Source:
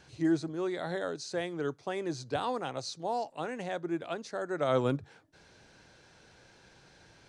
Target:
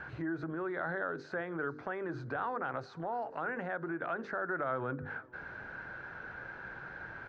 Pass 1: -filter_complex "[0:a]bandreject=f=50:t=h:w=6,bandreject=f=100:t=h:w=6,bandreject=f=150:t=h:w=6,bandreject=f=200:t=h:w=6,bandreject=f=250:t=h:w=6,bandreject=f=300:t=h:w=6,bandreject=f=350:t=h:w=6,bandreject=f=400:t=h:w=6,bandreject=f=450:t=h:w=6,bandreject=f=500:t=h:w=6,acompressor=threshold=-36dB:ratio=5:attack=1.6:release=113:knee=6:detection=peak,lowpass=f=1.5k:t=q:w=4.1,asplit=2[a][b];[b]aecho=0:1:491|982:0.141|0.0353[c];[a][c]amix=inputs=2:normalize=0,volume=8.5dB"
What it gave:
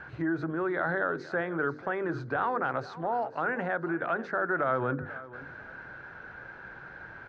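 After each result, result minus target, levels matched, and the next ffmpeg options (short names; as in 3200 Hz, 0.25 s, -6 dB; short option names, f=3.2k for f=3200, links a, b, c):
compressor: peak gain reduction -7 dB; echo-to-direct +7.5 dB
-filter_complex "[0:a]bandreject=f=50:t=h:w=6,bandreject=f=100:t=h:w=6,bandreject=f=150:t=h:w=6,bandreject=f=200:t=h:w=6,bandreject=f=250:t=h:w=6,bandreject=f=300:t=h:w=6,bandreject=f=350:t=h:w=6,bandreject=f=400:t=h:w=6,bandreject=f=450:t=h:w=6,bandreject=f=500:t=h:w=6,acompressor=threshold=-44.5dB:ratio=5:attack=1.6:release=113:knee=6:detection=peak,lowpass=f=1.5k:t=q:w=4.1,asplit=2[a][b];[b]aecho=0:1:491|982:0.141|0.0353[c];[a][c]amix=inputs=2:normalize=0,volume=8.5dB"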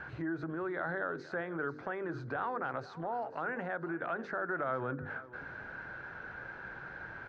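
echo-to-direct +7.5 dB
-filter_complex "[0:a]bandreject=f=50:t=h:w=6,bandreject=f=100:t=h:w=6,bandreject=f=150:t=h:w=6,bandreject=f=200:t=h:w=6,bandreject=f=250:t=h:w=6,bandreject=f=300:t=h:w=6,bandreject=f=350:t=h:w=6,bandreject=f=400:t=h:w=6,bandreject=f=450:t=h:w=6,bandreject=f=500:t=h:w=6,acompressor=threshold=-44.5dB:ratio=5:attack=1.6:release=113:knee=6:detection=peak,lowpass=f=1.5k:t=q:w=4.1,asplit=2[a][b];[b]aecho=0:1:491|982:0.0596|0.0149[c];[a][c]amix=inputs=2:normalize=0,volume=8.5dB"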